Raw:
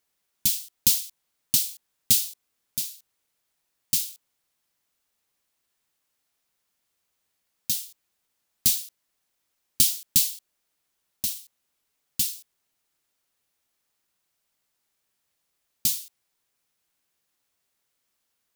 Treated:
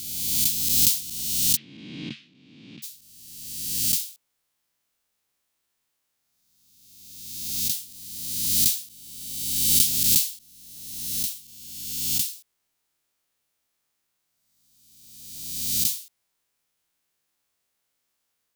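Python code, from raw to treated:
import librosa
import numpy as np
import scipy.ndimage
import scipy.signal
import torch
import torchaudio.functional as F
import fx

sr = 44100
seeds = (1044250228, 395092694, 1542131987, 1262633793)

y = fx.spec_swells(x, sr, rise_s=1.62)
y = fx.cabinet(y, sr, low_hz=140.0, low_slope=24, high_hz=2500.0, hz=(310.0, 620.0, 1100.0), db=(7, -4, 5), at=(1.55, 2.82), fade=0.02)
y = F.gain(torch.from_numpy(y), -3.0).numpy()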